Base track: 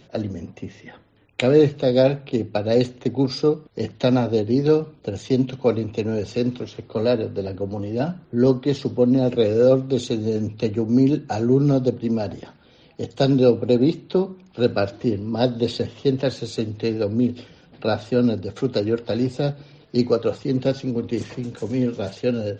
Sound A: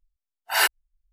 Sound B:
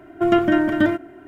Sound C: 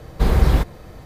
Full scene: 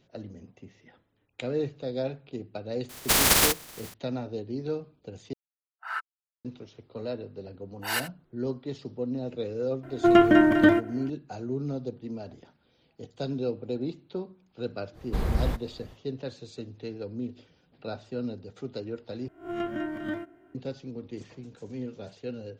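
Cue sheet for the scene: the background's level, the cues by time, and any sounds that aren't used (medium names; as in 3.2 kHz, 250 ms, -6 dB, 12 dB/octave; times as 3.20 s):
base track -14.5 dB
2.89 s: add C -6.5 dB + spectral contrast reduction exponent 0.16
5.33 s: replace with A -2 dB + band-pass filter 1.3 kHz, Q 7.7
7.33 s: add A -9 dB + delay 77 ms -13.5 dB
9.83 s: add B -0.5 dB
14.93 s: add C -11 dB, fades 0.05 s
19.28 s: replace with B -16 dB + reverse spectral sustain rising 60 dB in 0.36 s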